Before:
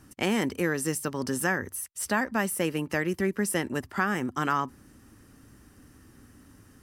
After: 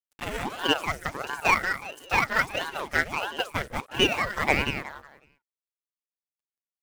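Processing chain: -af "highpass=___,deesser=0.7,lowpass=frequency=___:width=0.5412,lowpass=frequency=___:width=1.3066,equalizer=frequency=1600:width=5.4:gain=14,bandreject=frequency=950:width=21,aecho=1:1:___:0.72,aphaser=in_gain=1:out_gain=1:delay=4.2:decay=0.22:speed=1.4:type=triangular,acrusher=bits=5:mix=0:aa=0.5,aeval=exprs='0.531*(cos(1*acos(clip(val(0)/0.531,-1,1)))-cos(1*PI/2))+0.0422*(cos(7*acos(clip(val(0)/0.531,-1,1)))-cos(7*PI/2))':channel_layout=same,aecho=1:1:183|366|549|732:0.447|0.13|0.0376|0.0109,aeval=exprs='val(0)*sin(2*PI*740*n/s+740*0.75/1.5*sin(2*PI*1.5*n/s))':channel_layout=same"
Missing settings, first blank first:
110, 12000, 12000, 7.1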